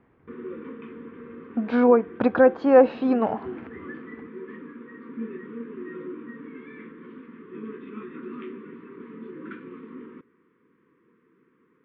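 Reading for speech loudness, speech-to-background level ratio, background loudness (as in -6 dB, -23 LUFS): -20.0 LUFS, 19.5 dB, -39.5 LUFS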